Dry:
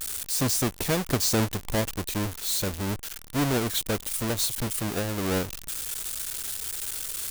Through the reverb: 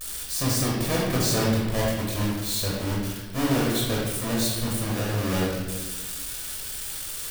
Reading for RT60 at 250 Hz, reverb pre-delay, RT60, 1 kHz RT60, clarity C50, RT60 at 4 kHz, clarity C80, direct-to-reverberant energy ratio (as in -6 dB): 1.7 s, 18 ms, 1.3 s, 1.1 s, -0.5 dB, 0.95 s, 2.5 dB, -5.0 dB